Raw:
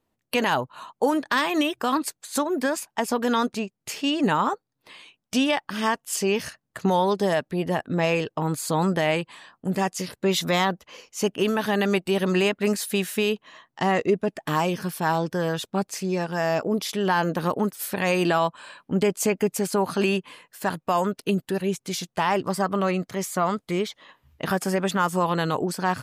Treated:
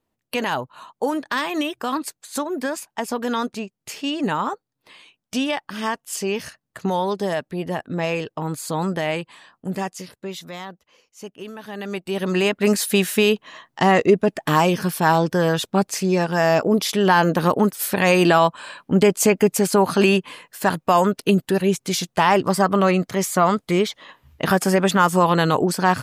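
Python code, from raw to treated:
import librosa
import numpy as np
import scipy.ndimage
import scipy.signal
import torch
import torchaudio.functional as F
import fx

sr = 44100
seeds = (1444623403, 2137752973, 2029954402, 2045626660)

y = fx.gain(x, sr, db=fx.line((9.75, -1.0), (10.5, -12.5), (11.61, -12.5), (12.19, -1.0), (12.77, 6.5)))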